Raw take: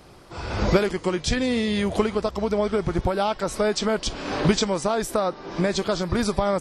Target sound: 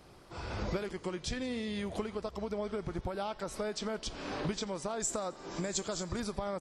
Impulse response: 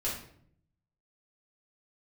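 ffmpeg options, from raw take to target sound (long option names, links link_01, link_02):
-filter_complex "[0:a]acompressor=threshold=-29dB:ratio=2,asettb=1/sr,asplit=3[link_01][link_02][link_03];[link_01]atrim=end=5.004[link_04];[link_02]atrim=start=5:end=6.2,asetpts=PTS-STARTPTS,afade=type=in:duration=0.004:curve=qsin,afade=type=out:start_time=1.196:duration=0.004:curve=qsin,lowpass=frequency=7300:width_type=q:width=10[link_05];[link_03]atrim=start=6.196[link_06];[link_04][link_05]acrossfade=duration=0.004:curve1=hsin:curve2=qsin[link_07];[link_07][link_06]acrossfade=duration=0.004:curve1=qsin:curve2=hsin,asplit=2[link_08][link_09];[link_09]aecho=0:1:87|174|261|348:0.0708|0.0418|0.0246|0.0145[link_10];[link_08][link_10]amix=inputs=2:normalize=0,volume=-8dB"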